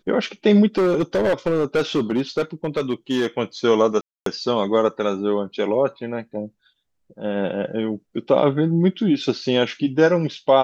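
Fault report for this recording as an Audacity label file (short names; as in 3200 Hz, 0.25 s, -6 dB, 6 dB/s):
0.770000	3.270000	clipped -15 dBFS
4.010000	4.260000	gap 0.253 s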